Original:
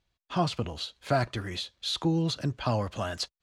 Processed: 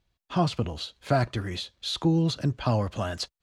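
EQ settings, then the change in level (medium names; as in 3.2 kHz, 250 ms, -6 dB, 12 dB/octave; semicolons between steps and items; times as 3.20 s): bass shelf 490 Hz +4.5 dB; 0.0 dB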